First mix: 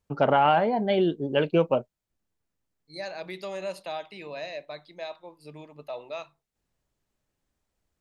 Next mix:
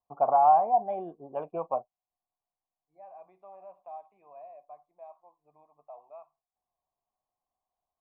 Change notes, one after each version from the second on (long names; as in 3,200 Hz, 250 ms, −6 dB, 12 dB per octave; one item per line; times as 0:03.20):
first voice +7.5 dB
master: add formant resonators in series a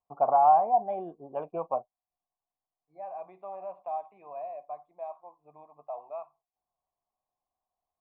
second voice +9.0 dB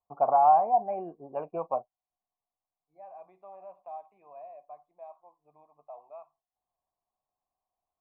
first voice: add linear-phase brick-wall low-pass 2,900 Hz
second voice −7.5 dB